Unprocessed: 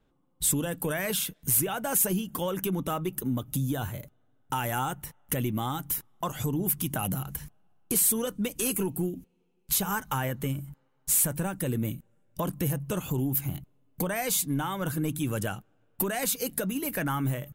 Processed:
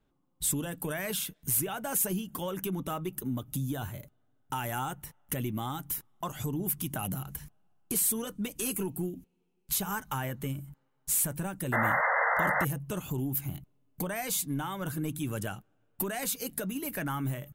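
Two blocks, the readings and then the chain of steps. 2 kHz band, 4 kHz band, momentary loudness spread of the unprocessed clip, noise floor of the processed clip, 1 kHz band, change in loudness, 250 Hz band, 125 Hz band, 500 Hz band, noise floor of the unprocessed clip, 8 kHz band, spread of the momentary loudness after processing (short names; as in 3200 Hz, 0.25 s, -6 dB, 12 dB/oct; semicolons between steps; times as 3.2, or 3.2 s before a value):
+3.5 dB, -4.0 dB, 10 LU, -73 dBFS, 0.0 dB, -3.0 dB, -4.0 dB, -4.0 dB, -3.5 dB, -69 dBFS, -4.0 dB, 11 LU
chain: painted sound noise, 11.72–12.65, 460–2100 Hz -23 dBFS; notch 500 Hz, Q 12; gain -4 dB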